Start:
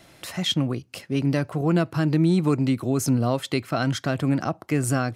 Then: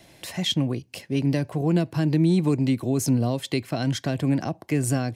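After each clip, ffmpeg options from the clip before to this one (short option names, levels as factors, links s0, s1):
-filter_complex "[0:a]equalizer=f=1300:w=5.3:g=-13.5,acrossover=split=410|3000[s0][s1][s2];[s1]acompressor=threshold=0.0355:ratio=6[s3];[s0][s3][s2]amix=inputs=3:normalize=0"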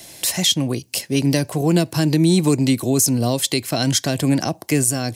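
-af "bass=f=250:g=-3,treble=f=4000:g=14,alimiter=limit=0.237:level=0:latency=1:release=225,volume=2.11"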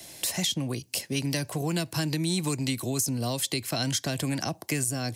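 -filter_complex "[0:a]acrossover=split=160|900[s0][s1][s2];[s0]acompressor=threshold=0.0398:ratio=4[s3];[s1]acompressor=threshold=0.0447:ratio=4[s4];[s2]acompressor=threshold=0.0891:ratio=4[s5];[s3][s4][s5]amix=inputs=3:normalize=0,volume=0.562"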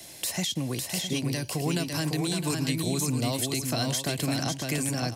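-filter_complex "[0:a]alimiter=limit=0.126:level=0:latency=1:release=135,asplit=2[s0][s1];[s1]aecho=0:1:554|661:0.631|0.316[s2];[s0][s2]amix=inputs=2:normalize=0"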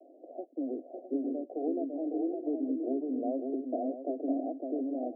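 -af "asuperpass=centerf=430:order=20:qfactor=0.9"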